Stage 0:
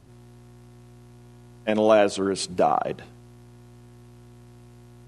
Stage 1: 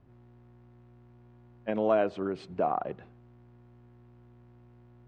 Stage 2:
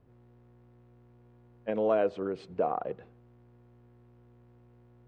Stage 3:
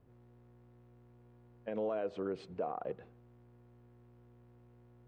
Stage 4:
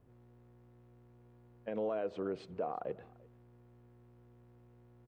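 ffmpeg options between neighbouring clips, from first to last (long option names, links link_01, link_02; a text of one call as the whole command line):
ffmpeg -i in.wav -af "lowpass=2000,volume=-7.5dB" out.wav
ffmpeg -i in.wav -af "equalizer=frequency=480:width_type=o:width=0.27:gain=10,volume=-3dB" out.wav
ffmpeg -i in.wav -af "alimiter=level_in=1dB:limit=-24dB:level=0:latency=1:release=125,volume=-1dB,volume=-2.5dB" out.wav
ffmpeg -i in.wav -af "aecho=1:1:344:0.0631" out.wav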